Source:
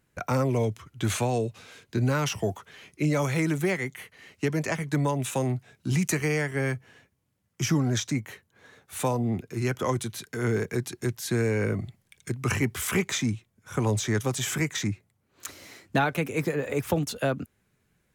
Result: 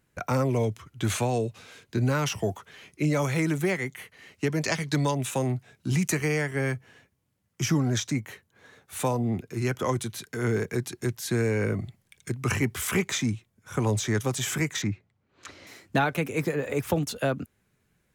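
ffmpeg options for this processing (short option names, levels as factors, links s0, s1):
-filter_complex "[0:a]asettb=1/sr,asplit=3[s0][s1][s2];[s0]atrim=end=4.634[s3];[s1]atrim=start=4.63:end=5.15,asetpts=PTS-STARTPTS,afade=t=in:d=0.004:c=qsin,afade=t=out:st=0.516:d=0.004:c=qsin,equalizer=f=4500:w=1.2:g=12[s4];[s2]atrim=start=5.146[s5];[s3][s4]acrossfade=d=0.004:c1=hsin:c2=qsin[s6];[s6][s5]acrossfade=d=0.004:c1=qsin:c2=hsin,asettb=1/sr,asplit=3[s7][s8][s9];[s7]atrim=end=14.824[s10];[s8]atrim=start=14.82:end=15.67,asetpts=PTS-STARTPTS,afade=t=in:d=0.004:c=qsin,afade=t=out:st=0.846:d=0.004:c=qsin,lowpass=4200[s11];[s9]atrim=start=15.666[s12];[s10][s11]acrossfade=d=0.004:c1=hsin:c2=qsin[s13];[s13][s12]acrossfade=d=0.004:c1=qsin:c2=hsin"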